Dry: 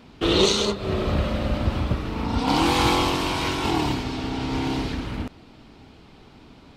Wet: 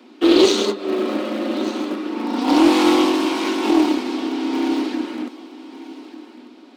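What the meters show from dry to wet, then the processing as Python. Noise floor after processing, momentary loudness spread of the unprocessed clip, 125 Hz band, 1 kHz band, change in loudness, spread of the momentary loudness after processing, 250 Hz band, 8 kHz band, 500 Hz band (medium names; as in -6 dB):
-45 dBFS, 9 LU, under -15 dB, +1.5 dB, +4.5 dB, 23 LU, +8.5 dB, +0.5 dB, +6.0 dB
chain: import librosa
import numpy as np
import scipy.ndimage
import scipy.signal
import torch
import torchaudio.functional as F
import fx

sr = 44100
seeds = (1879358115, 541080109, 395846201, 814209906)

p1 = fx.schmitt(x, sr, flips_db=-19.0)
p2 = x + (p1 * 10.0 ** (-8.0 / 20.0))
p3 = scipy.signal.sosfilt(scipy.signal.butter(16, 220.0, 'highpass', fs=sr, output='sos'), p2)
p4 = fx.peak_eq(p3, sr, hz=300.0, db=11.5, octaves=0.52)
p5 = p4 + 0.33 * np.pad(p4, (int(5.5 * sr / 1000.0), 0))[:len(p4)]
p6 = p5 + fx.echo_feedback(p5, sr, ms=1194, feedback_pct=25, wet_db=-16.5, dry=0)
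y = fx.doppler_dist(p6, sr, depth_ms=0.15)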